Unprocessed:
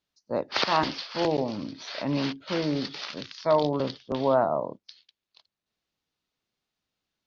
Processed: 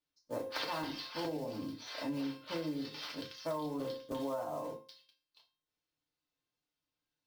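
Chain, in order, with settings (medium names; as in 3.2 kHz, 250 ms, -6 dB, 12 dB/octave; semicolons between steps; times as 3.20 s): block-companded coder 5-bit; feedback comb 530 Hz, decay 0.47 s, mix 80%; FDN reverb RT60 0.3 s, low-frequency decay 1.1×, high-frequency decay 0.85×, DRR -1.5 dB; compression 12:1, threshold -36 dBFS, peak gain reduction 12.5 dB; trim +2 dB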